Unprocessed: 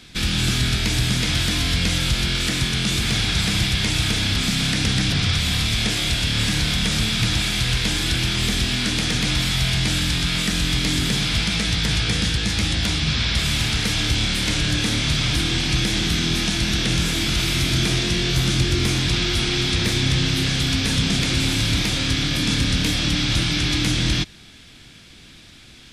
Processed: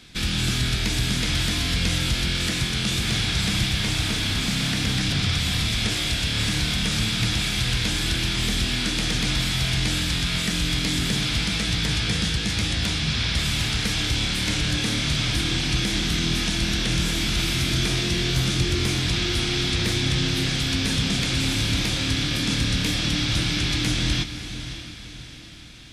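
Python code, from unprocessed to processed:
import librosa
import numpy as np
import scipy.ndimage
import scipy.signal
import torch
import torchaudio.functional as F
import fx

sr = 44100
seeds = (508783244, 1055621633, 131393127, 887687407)

y = fx.cvsd(x, sr, bps=64000, at=(3.7, 4.99))
y = fx.echo_diffused(y, sr, ms=589, feedback_pct=47, wet_db=-11.0)
y = y * 10.0 ** (-3.0 / 20.0)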